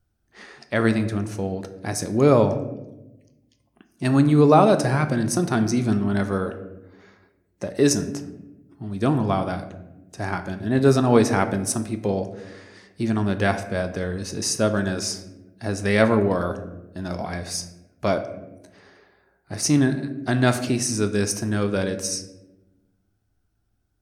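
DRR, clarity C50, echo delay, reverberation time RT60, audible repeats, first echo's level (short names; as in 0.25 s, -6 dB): 8.0 dB, 11.5 dB, none, 1.0 s, none, none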